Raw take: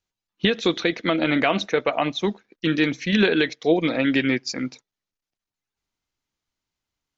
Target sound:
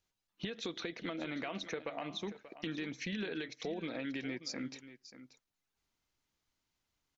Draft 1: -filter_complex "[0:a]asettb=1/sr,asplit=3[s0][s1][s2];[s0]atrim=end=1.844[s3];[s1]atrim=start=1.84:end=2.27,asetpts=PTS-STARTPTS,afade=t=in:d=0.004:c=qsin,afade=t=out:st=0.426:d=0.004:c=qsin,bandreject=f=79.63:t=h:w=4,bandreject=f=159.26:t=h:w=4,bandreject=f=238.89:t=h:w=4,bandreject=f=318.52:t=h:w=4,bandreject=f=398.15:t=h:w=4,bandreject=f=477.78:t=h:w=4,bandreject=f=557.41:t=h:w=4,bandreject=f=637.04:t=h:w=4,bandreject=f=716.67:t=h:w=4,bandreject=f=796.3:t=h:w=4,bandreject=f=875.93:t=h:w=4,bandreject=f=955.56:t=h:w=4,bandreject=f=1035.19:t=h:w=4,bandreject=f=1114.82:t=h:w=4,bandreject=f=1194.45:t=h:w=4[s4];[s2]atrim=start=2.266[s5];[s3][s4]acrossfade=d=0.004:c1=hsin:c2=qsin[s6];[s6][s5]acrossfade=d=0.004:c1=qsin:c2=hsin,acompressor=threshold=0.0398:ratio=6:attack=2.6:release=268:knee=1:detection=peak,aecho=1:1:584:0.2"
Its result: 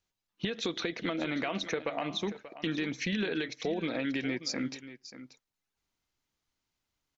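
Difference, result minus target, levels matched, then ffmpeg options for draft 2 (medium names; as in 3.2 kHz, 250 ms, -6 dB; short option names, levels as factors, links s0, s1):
compression: peak gain reduction -7 dB
-filter_complex "[0:a]asettb=1/sr,asplit=3[s0][s1][s2];[s0]atrim=end=1.844[s3];[s1]atrim=start=1.84:end=2.27,asetpts=PTS-STARTPTS,afade=t=in:d=0.004:c=qsin,afade=t=out:st=0.426:d=0.004:c=qsin,bandreject=f=79.63:t=h:w=4,bandreject=f=159.26:t=h:w=4,bandreject=f=238.89:t=h:w=4,bandreject=f=318.52:t=h:w=4,bandreject=f=398.15:t=h:w=4,bandreject=f=477.78:t=h:w=4,bandreject=f=557.41:t=h:w=4,bandreject=f=637.04:t=h:w=4,bandreject=f=716.67:t=h:w=4,bandreject=f=796.3:t=h:w=4,bandreject=f=875.93:t=h:w=4,bandreject=f=955.56:t=h:w=4,bandreject=f=1035.19:t=h:w=4,bandreject=f=1114.82:t=h:w=4,bandreject=f=1194.45:t=h:w=4[s4];[s2]atrim=start=2.266[s5];[s3][s4]acrossfade=d=0.004:c1=hsin:c2=qsin[s6];[s6][s5]acrossfade=d=0.004:c1=qsin:c2=hsin,acompressor=threshold=0.015:ratio=6:attack=2.6:release=268:knee=1:detection=peak,aecho=1:1:584:0.2"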